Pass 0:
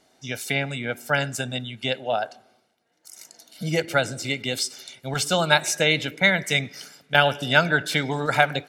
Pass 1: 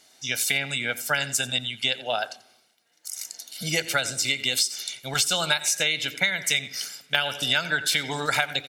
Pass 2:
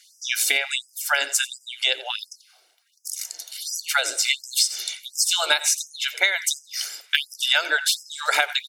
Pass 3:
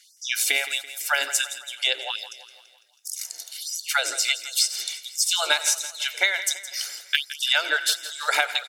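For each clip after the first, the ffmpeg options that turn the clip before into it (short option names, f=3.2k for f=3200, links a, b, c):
-af "tiltshelf=f=1.5k:g=-8,aecho=1:1:87:0.112,acompressor=threshold=-22dB:ratio=10,volume=2.5dB"
-af "afftfilt=real='re*gte(b*sr/1024,280*pow(5000/280,0.5+0.5*sin(2*PI*1.4*pts/sr)))':imag='im*gte(b*sr/1024,280*pow(5000/280,0.5+0.5*sin(2*PI*1.4*pts/sr)))':win_size=1024:overlap=0.75,volume=3.5dB"
-af "aecho=1:1:167|334|501|668|835:0.2|0.104|0.054|0.0281|0.0146,volume=-1.5dB"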